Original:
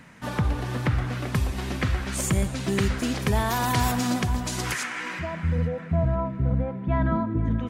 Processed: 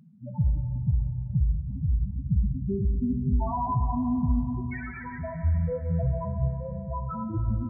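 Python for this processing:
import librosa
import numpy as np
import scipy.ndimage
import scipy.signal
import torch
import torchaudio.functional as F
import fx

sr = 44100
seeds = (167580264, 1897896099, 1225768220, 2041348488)

y = fx.tilt_shelf(x, sr, db=-6.0, hz=1400.0, at=(6.49, 7.31))
y = fx.spec_topn(y, sr, count=2)
y = fx.rev_plate(y, sr, seeds[0], rt60_s=3.7, hf_ratio=0.75, predelay_ms=0, drr_db=6.0)
y = F.gain(torch.from_numpy(y), 2.5).numpy()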